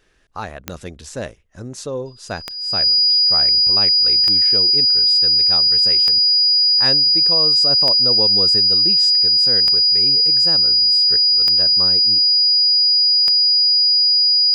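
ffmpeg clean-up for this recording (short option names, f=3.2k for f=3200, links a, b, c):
-af "adeclick=t=4,bandreject=f=4.9k:w=30"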